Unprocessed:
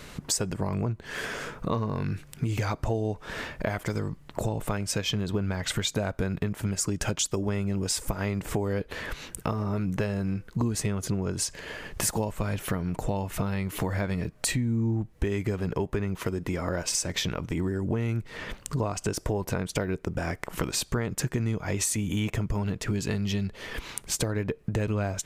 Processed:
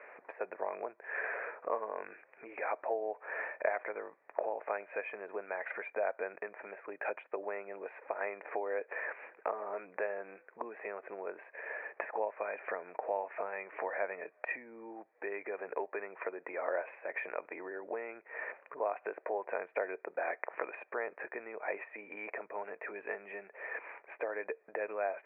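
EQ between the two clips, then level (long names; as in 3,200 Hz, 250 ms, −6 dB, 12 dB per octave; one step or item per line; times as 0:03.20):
high-pass filter 480 Hz 24 dB per octave
Chebyshev low-pass with heavy ripple 2,500 Hz, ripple 6 dB
high-frequency loss of the air 91 metres
+1.0 dB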